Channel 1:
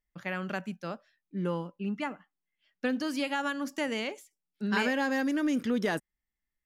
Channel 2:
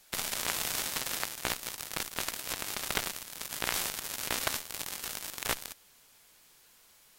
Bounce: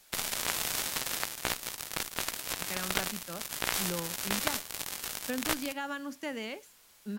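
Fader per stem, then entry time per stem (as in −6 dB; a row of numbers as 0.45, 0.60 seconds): −5.5, +0.5 decibels; 2.45, 0.00 seconds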